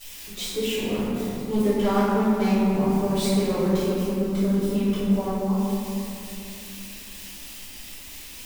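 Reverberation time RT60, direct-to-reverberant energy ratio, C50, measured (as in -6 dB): 2.9 s, -13.5 dB, -3.5 dB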